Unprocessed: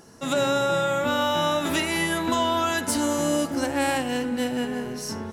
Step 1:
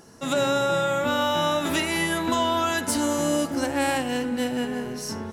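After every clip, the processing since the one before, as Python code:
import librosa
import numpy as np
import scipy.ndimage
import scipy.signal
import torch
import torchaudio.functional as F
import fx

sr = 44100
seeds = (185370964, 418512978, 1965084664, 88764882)

y = x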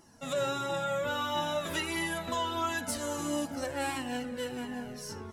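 y = fx.comb_cascade(x, sr, direction='falling', hz=1.5)
y = y * librosa.db_to_amplitude(-4.0)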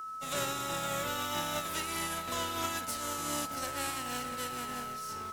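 y = fx.spec_flatten(x, sr, power=0.51)
y = y + 10.0 ** (-35.0 / 20.0) * np.sin(2.0 * np.pi * 1300.0 * np.arange(len(y)) / sr)
y = y * librosa.db_to_amplitude(-3.5)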